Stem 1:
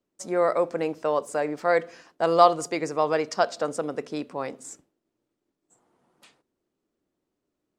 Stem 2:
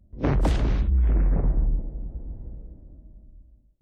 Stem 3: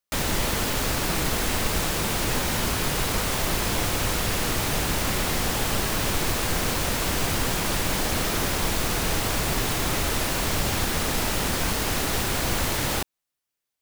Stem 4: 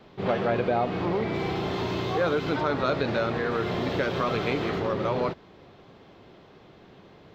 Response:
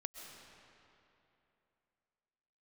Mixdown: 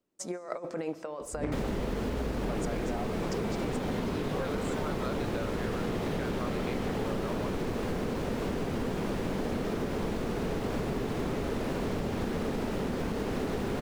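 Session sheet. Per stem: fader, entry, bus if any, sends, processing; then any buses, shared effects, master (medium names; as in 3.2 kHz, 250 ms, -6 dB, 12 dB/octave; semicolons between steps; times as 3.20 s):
-7.5 dB, 0.00 s, send -9.5 dB, compressor with a negative ratio -28 dBFS, ratio -0.5
-3.5 dB, 1.20 s, no send, compression, threshold -22 dBFS, peak gain reduction 5.5 dB
-2.0 dB, 1.40 s, no send, low-pass 1.8 kHz 6 dB/octave; small resonant body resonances 230/410 Hz, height 11 dB, ringing for 20 ms
-3.0 dB, 2.20 s, no send, none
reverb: on, RT60 3.0 s, pre-delay 90 ms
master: compression 12:1, threshold -28 dBFS, peak gain reduction 12 dB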